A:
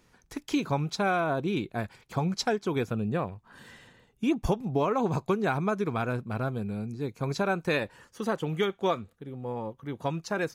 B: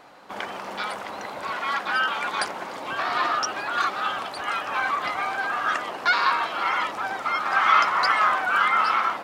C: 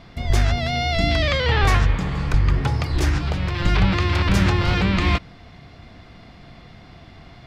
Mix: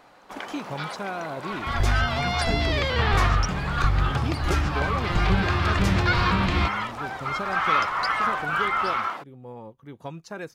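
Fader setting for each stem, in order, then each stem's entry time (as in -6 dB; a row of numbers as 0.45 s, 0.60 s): -6.0 dB, -4.0 dB, -4.5 dB; 0.00 s, 0.00 s, 1.50 s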